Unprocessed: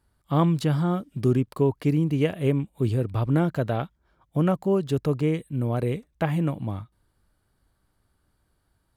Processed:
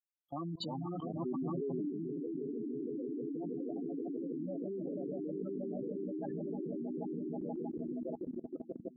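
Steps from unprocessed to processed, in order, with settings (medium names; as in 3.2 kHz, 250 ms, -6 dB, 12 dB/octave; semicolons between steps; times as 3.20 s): expander on every frequency bin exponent 2; ever faster or slower copies 220 ms, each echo -4 st, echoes 2, each echo -6 dB; echo with a slow build-up 159 ms, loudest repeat 5, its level -9 dB; LFO notch saw up 8.1 Hz 460–2200 Hz; 4.59–5.42 s: hard clipper -22.5 dBFS, distortion -21 dB; high-pass 220 Hz 24 dB/octave; spectral gate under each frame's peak -10 dB strong; treble shelf 3.1 kHz +12 dB; level held to a coarse grid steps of 19 dB; 1.19–1.90 s: tilt shelf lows +3.5 dB, about 1.3 kHz; trim -1 dB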